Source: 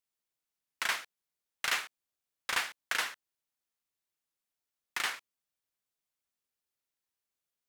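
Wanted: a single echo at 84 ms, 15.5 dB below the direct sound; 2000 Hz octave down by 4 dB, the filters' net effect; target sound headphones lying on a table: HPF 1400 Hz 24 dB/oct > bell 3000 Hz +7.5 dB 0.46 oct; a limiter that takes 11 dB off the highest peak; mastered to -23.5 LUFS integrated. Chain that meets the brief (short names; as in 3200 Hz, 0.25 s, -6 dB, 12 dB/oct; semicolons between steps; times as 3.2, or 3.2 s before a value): bell 2000 Hz -6.5 dB; limiter -30 dBFS; HPF 1400 Hz 24 dB/oct; bell 3000 Hz +7.5 dB 0.46 oct; echo 84 ms -15.5 dB; gain +18.5 dB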